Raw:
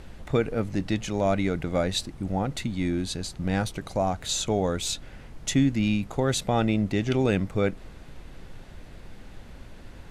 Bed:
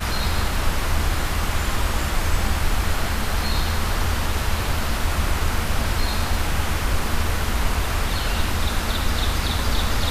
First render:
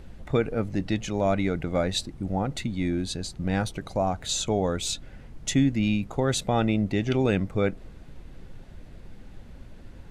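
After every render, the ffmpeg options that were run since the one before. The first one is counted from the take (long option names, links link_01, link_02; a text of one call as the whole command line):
ffmpeg -i in.wav -af "afftdn=noise_reduction=6:noise_floor=-46" out.wav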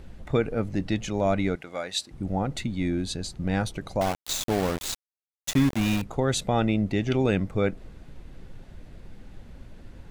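ffmpeg -i in.wav -filter_complex "[0:a]asettb=1/sr,asplit=3[link_01][link_02][link_03];[link_01]atrim=end=1.554[link_04];[link_02]atrim=start=1.55:end=2.11,asetpts=PTS-STARTPTS,afade=type=in:duration=0.004:curve=qsin,afade=type=out:start_time=0.556:duration=0.004:curve=qsin,highpass=frequency=1200:poles=1[link_05];[link_03]atrim=start=2.106[link_06];[link_04][link_05]acrossfade=duration=0.004:curve1=hsin:curve2=qsin[link_07];[link_07][link_06]acrossfade=duration=0.004:curve1=qsin:curve2=hsin,asettb=1/sr,asplit=3[link_08][link_09][link_10];[link_08]atrim=end=4.014[link_11];[link_09]atrim=start=4.01:end=6.02,asetpts=PTS-STARTPTS,afade=type=in:duration=0.004:curve=qsin,afade=type=out:start_time=2.006:duration=0.004:curve=qsin,aeval=exprs='val(0)*gte(abs(val(0)),0.0473)':channel_layout=same[link_12];[link_10]atrim=start=6.016[link_13];[link_11][link_12]acrossfade=duration=0.004:curve1=hsin:curve2=qsin[link_14];[link_14][link_13]acrossfade=duration=0.004:curve1=qsin:curve2=hsin" out.wav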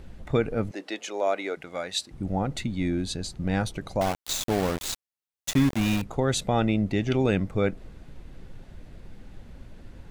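ffmpeg -i in.wav -filter_complex "[0:a]asettb=1/sr,asplit=3[link_01][link_02][link_03];[link_01]atrim=end=0.714[link_04];[link_02]atrim=start=0.71:end=1.57,asetpts=PTS-STARTPTS,afade=type=in:duration=0.004:curve=qsin,afade=type=out:start_time=0.856:duration=0.004:curve=qsin,highpass=frequency=370:width=0.5412,highpass=frequency=370:width=1.3066[link_05];[link_03]atrim=start=1.566[link_06];[link_04][link_05]acrossfade=duration=0.004:curve1=hsin:curve2=qsin[link_07];[link_07][link_06]acrossfade=duration=0.004:curve1=qsin:curve2=hsin" out.wav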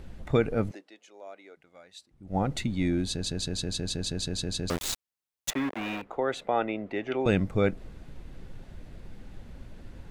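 ffmpeg -i in.wav -filter_complex "[0:a]asettb=1/sr,asplit=3[link_01][link_02][link_03];[link_01]atrim=end=5.504[link_04];[link_02]atrim=start=5.5:end=7.26,asetpts=PTS-STARTPTS,afade=type=in:duration=0.004:curve=qsin,afade=type=out:start_time=1.756:duration=0.004:curve=qsin,acrossover=split=320 2800:gain=0.0794 1 0.112[link_05][link_06][link_07];[link_05][link_06][link_07]amix=inputs=3:normalize=0[link_08];[link_03]atrim=start=7.256[link_09];[link_04][link_08]acrossfade=duration=0.004:curve1=hsin:curve2=qsin[link_10];[link_10][link_09]acrossfade=duration=0.004:curve1=qsin:curve2=hsin,asplit=13[link_11][link_12][link_13][link_14][link_15][link_16][link_17][link_18][link_19][link_20][link_21][link_22][link_23];[link_11]atrim=end=1.16,asetpts=PTS-STARTPTS,afade=type=out:start_time=0.72:duration=0.44:curve=exp:silence=0.105925[link_24];[link_12]atrim=start=1.16:end=1.92,asetpts=PTS-STARTPTS,volume=-19.5dB[link_25];[link_13]atrim=start=1.92:end=3.262,asetpts=PTS-STARTPTS,afade=type=in:duration=0.44:curve=exp:silence=0.105925[link_26];[link_14]atrim=start=3.098:end=3.262[link_27];[link_15]atrim=start=3.098:end=3.262[link_28];[link_16]atrim=start=3.098:end=3.262[link_29];[link_17]atrim=start=3.098:end=3.262[link_30];[link_18]atrim=start=3.098:end=3.262[link_31];[link_19]atrim=start=3.098:end=3.262[link_32];[link_20]atrim=start=3.098:end=3.262[link_33];[link_21]atrim=start=3.098:end=3.262[link_34];[link_22]atrim=start=3.098:end=3.262[link_35];[link_23]atrim=start=4.698[link_36];[link_24][link_25][link_26]concat=n=3:v=0:a=1[link_37];[link_37][link_27]acrossfade=duration=0.004:curve1=hsin:curve2=hsin[link_38];[link_38][link_28]acrossfade=duration=0.004:curve1=hsin:curve2=hsin[link_39];[link_39][link_29]acrossfade=duration=0.004:curve1=hsin:curve2=hsin[link_40];[link_40][link_30]acrossfade=duration=0.004:curve1=hsin:curve2=hsin[link_41];[link_41][link_31]acrossfade=duration=0.004:curve1=hsin:curve2=hsin[link_42];[link_42][link_32]acrossfade=duration=0.004:curve1=hsin:curve2=hsin[link_43];[link_43][link_33]acrossfade=duration=0.004:curve1=hsin:curve2=hsin[link_44];[link_44][link_34]acrossfade=duration=0.004:curve1=hsin:curve2=hsin[link_45];[link_45][link_35]acrossfade=duration=0.004:curve1=hsin:curve2=hsin[link_46];[link_46][link_36]acrossfade=duration=0.004:curve1=hsin:curve2=hsin" out.wav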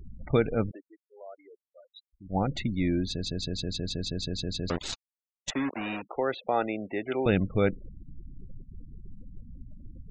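ffmpeg -i in.wav -af "lowpass=5700,afftfilt=real='re*gte(hypot(re,im),0.0126)':imag='im*gte(hypot(re,im),0.0126)':win_size=1024:overlap=0.75" out.wav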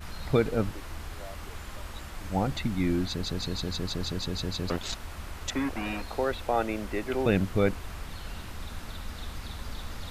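ffmpeg -i in.wav -i bed.wav -filter_complex "[1:a]volume=-18dB[link_01];[0:a][link_01]amix=inputs=2:normalize=0" out.wav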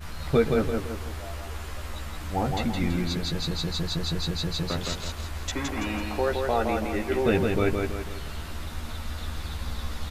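ffmpeg -i in.wav -filter_complex "[0:a]asplit=2[link_01][link_02];[link_02]adelay=13,volume=-4dB[link_03];[link_01][link_03]amix=inputs=2:normalize=0,aecho=1:1:166|332|498|664|830:0.631|0.271|0.117|0.0502|0.0216" out.wav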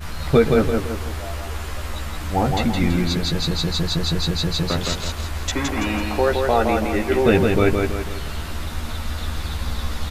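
ffmpeg -i in.wav -af "volume=7dB,alimiter=limit=-3dB:level=0:latency=1" out.wav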